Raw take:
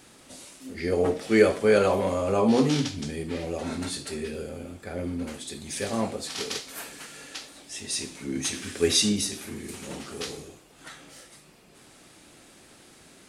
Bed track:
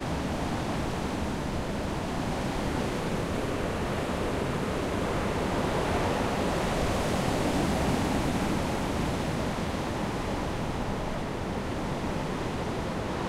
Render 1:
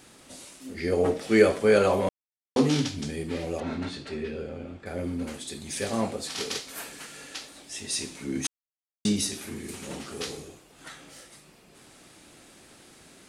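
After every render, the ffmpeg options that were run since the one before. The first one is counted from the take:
-filter_complex "[0:a]asettb=1/sr,asplit=3[a][b][c];[a]atrim=end=3.604[d];[b]atrim=start=3.6:end=4.86,asetpts=PTS-STARTPTS,afade=t=in:d=0.004:c=qsin,afade=t=out:st=1.256:d=0.004:c=qsin,lowpass=3.4k[e];[c]atrim=start=4.856[f];[d][e]acrossfade=d=0.004:c1=hsin:c2=qsin[g];[g][f]acrossfade=d=0.004:c1=qsin:c2=hsin,asplit=5[h][i][j][k][l];[h]atrim=end=2.09,asetpts=PTS-STARTPTS,afade=t=out:st=2.086:d=0.004:c=hsin[m];[i]atrim=start=2.09:end=2.56,asetpts=PTS-STARTPTS,volume=0[n];[j]atrim=start=2.56:end=8.47,asetpts=PTS-STARTPTS,afade=t=in:d=0.004:c=hsin,afade=t=out:st=5.906:d=0.004:c=hsin[o];[k]atrim=start=8.47:end=9.05,asetpts=PTS-STARTPTS,volume=0[p];[l]atrim=start=9.05,asetpts=PTS-STARTPTS,afade=t=in:d=0.004:c=hsin[q];[m][n][o][p][q]concat=n=5:v=0:a=1"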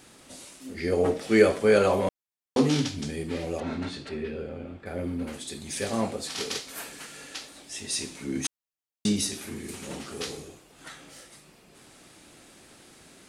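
-filter_complex "[0:a]asettb=1/sr,asplit=3[a][b][c];[a]atrim=end=4.094[d];[b]atrim=start=4.09:end=5.33,asetpts=PTS-STARTPTS,afade=t=in:d=0.004:c=qsin,afade=t=out:st=1.236:d=0.004:c=qsin,equalizer=f=6.7k:w=1.1:g=-7.5[e];[c]atrim=start=5.326[f];[d][e]acrossfade=d=0.004:c1=hsin:c2=qsin[g];[g][f]acrossfade=d=0.004:c1=qsin:c2=hsin"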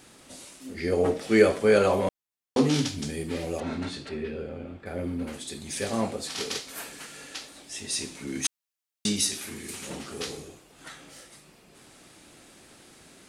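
-filter_complex "[0:a]asettb=1/sr,asplit=3[a][b][c];[a]atrim=end=2.744[d];[b]atrim=start=2.74:end=4.06,asetpts=PTS-STARTPTS,afade=t=in:d=0.004:c=qsin,afade=t=out:st=1.316:d=0.004:c=qsin,highshelf=f=8.7k:g=8.5[e];[c]atrim=start=4.056[f];[d][e]acrossfade=d=0.004:c1=hsin:c2=qsin[g];[g][f]acrossfade=d=0.004:c1=qsin:c2=hsin,asettb=1/sr,asplit=3[h][i][j];[h]atrim=end=8.274[k];[i]atrim=start=8.27:end=9.9,asetpts=PTS-STARTPTS,afade=t=in:d=0.004:c=qsin,afade=t=out:st=1.626:d=0.004:c=qsin,tiltshelf=f=970:g=-4[l];[j]atrim=start=9.896[m];[k][l]acrossfade=d=0.004:c1=hsin:c2=qsin[n];[n][m]acrossfade=d=0.004:c1=qsin:c2=hsin"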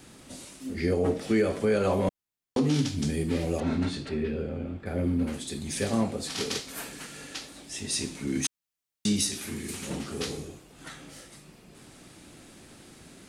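-filter_complex "[0:a]acrossover=split=300|3400[a][b][c];[a]acontrast=73[d];[d][b][c]amix=inputs=3:normalize=0,alimiter=limit=-15.5dB:level=0:latency=1:release=254"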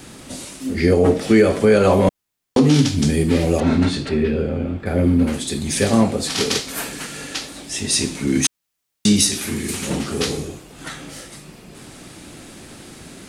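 -af "volume=11dB"

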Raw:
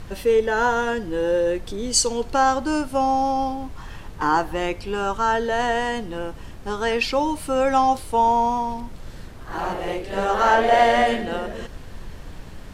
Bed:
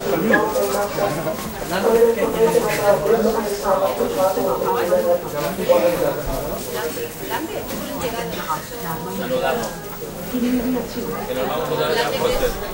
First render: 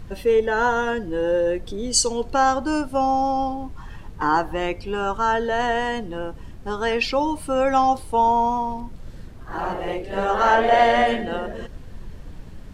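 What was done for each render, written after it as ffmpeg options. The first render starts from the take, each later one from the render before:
-af "afftdn=nr=7:nf=-39"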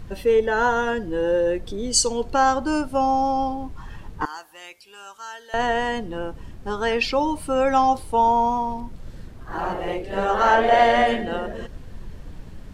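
-filter_complex "[0:a]asettb=1/sr,asplit=3[a][b][c];[a]atrim=end=4.254[d];[b]atrim=start=4.25:end=5.54,asetpts=PTS-STARTPTS,afade=t=in:d=0.004:c=qsin,afade=t=out:st=1.286:d=0.004:c=qsin,aderivative[e];[c]atrim=start=5.536[f];[d][e]acrossfade=d=0.004:c1=hsin:c2=qsin[g];[g][f]acrossfade=d=0.004:c1=qsin:c2=hsin"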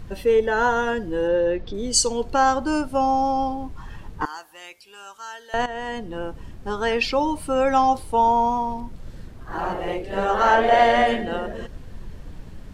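-filter_complex "[0:a]asplit=3[a][b][c];[a]afade=t=out:st=1.27:d=0.02[d];[b]lowpass=f=5k:w=0.5412,lowpass=f=5k:w=1.3066,afade=t=in:st=1.27:d=0.02,afade=t=out:st=1.73:d=0.02[e];[c]afade=t=in:st=1.73:d=0.02[f];[d][e][f]amix=inputs=3:normalize=0,asplit=2[g][h];[g]atrim=end=5.66,asetpts=PTS-STARTPTS,afade=t=out:st=5.656:d=0.004:c=hsin:silence=0.211349[i];[h]atrim=start=5.66,asetpts=PTS-STARTPTS,afade=t=in:d=0.77:c=qsin:silence=0.211349[j];[i][j]concat=n=2:v=0:a=1"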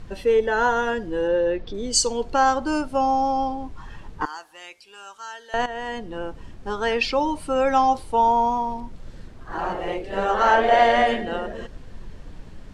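-af "lowpass=8.8k,equalizer=f=89:t=o:w=2.7:g=-4"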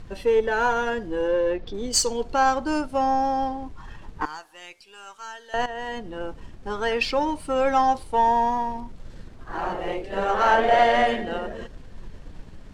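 -af "aeval=exprs='if(lt(val(0),0),0.708*val(0),val(0))':c=same"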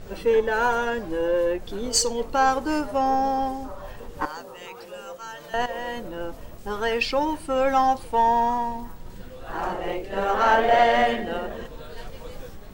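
-filter_complex "[1:a]volume=-22.5dB[a];[0:a][a]amix=inputs=2:normalize=0"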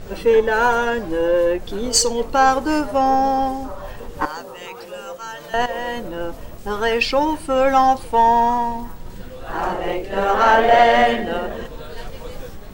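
-af "volume=5.5dB,alimiter=limit=-2dB:level=0:latency=1"

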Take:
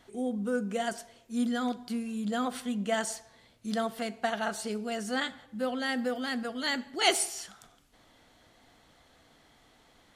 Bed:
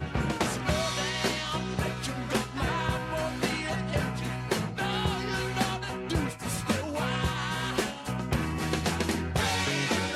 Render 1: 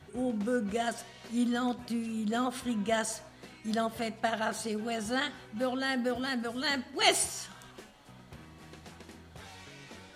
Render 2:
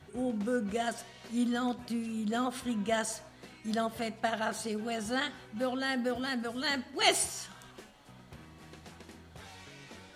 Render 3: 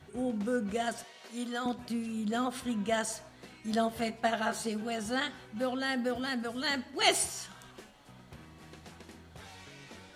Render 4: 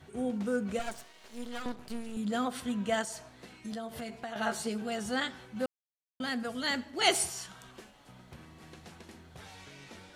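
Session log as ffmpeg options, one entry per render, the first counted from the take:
-filter_complex "[1:a]volume=-21.5dB[a];[0:a][a]amix=inputs=2:normalize=0"
-af "volume=-1dB"
-filter_complex "[0:a]asettb=1/sr,asplit=3[a][b][c];[a]atrim=end=1.044[d];[b]atrim=start=1.04:end=1.66,asetpts=PTS-STARTPTS,afade=t=in:d=0.004:c=qsin,afade=t=out:st=0.616:d=0.004:c=qsin,highpass=370[e];[c]atrim=start=1.656[f];[d][e]acrossfade=d=0.004:c1=hsin:c2=qsin[g];[g][f]acrossfade=d=0.004:c1=qsin:c2=hsin,asettb=1/sr,asplit=3[h][i][j];[h]atrim=end=3.714[k];[i]atrim=start=3.71:end=4.82,asetpts=PTS-STARTPTS,afade=t=in:d=0.004:c=qsin,afade=t=out:st=1.106:d=0.004:c=qsin,asplit=2[l][m];[m]adelay=13,volume=-5dB[n];[l][n]amix=inputs=2:normalize=0,atrim=end_sample=48951[o];[j]atrim=start=4.816[p];[k][o]acrossfade=d=0.004:c1=hsin:c2=qsin[q];[q][p]acrossfade=d=0.004:c1=qsin:c2=hsin"
-filter_complex "[0:a]asettb=1/sr,asplit=3[a][b][c];[a]atrim=end=0.794[d];[b]atrim=start=0.79:end=2.17,asetpts=PTS-STARTPTS,afade=t=in:d=0.004:c=qsin,afade=t=out:st=1.376:d=0.004:c=qsin,aeval=exprs='max(val(0),0)':c=same[e];[c]atrim=start=2.166[f];[d][e]acrossfade=d=0.004:c1=hsin:c2=qsin[g];[g][f]acrossfade=d=0.004:c1=qsin:c2=hsin,asettb=1/sr,asplit=3[h][i][j];[h]atrim=end=3.024[k];[i]atrim=start=3.02:end=4.36,asetpts=PTS-STARTPTS,afade=t=in:d=0.004:c=qsin,afade=t=out:st=1.336:d=0.004:c=qsin,acompressor=threshold=-36dB:ratio=6:attack=3.2:release=140:knee=1:detection=peak[l];[j]atrim=start=4.356[m];[k][l]acrossfade=d=0.004:c1=hsin:c2=qsin[n];[n][m]acrossfade=d=0.004:c1=qsin:c2=hsin,asplit=3[o][p][q];[o]atrim=end=5.66,asetpts=PTS-STARTPTS,afade=t=out:st=5.656:d=0.004:c=hsin[r];[p]atrim=start=5.66:end=6.2,asetpts=PTS-STARTPTS,volume=0[s];[q]atrim=start=6.2,asetpts=PTS-STARTPTS,afade=t=in:d=0.004:c=hsin[t];[r][s][t]concat=n=3:v=0:a=1"

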